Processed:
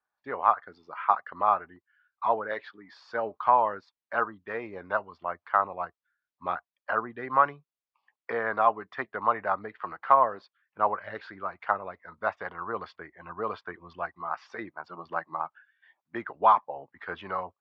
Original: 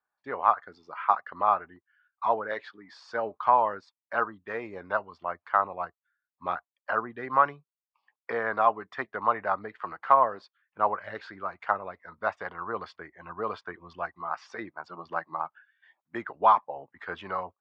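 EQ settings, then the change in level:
low-pass filter 4,600 Hz 12 dB per octave
0.0 dB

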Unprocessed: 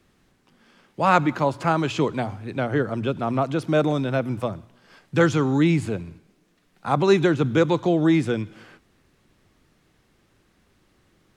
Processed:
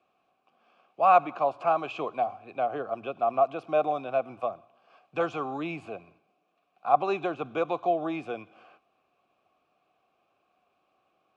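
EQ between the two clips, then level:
formant filter a
+6.0 dB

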